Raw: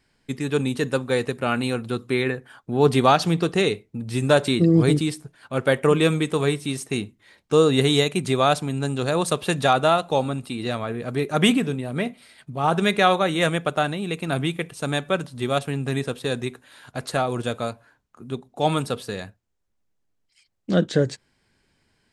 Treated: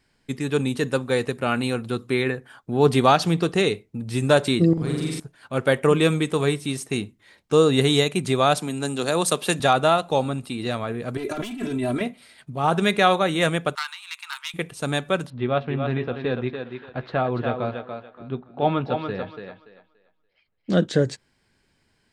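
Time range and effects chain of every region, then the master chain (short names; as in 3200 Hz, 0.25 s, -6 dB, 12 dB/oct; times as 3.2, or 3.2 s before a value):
4.73–5.2 compressor 3:1, threshold -28 dBFS + flutter echo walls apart 7.5 m, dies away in 1.3 s
8.57–9.6 HPF 160 Hz 24 dB/oct + high shelf 4500 Hz +7 dB
11.17–12.01 overloaded stage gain 18 dB + comb 3 ms, depth 93% + negative-ratio compressor -28 dBFS
13.75–14.54 self-modulated delay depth 0.13 ms + rippled Chebyshev high-pass 900 Hz, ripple 3 dB
15.3–20.7 Bessel low-pass 2300 Hz, order 6 + doubler 16 ms -13.5 dB + thinning echo 0.287 s, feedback 25%, high-pass 230 Hz, level -5.5 dB
whole clip: dry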